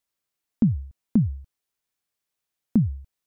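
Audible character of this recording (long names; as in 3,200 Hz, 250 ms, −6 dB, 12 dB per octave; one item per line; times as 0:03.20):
background noise floor −84 dBFS
spectral slope −13.5 dB per octave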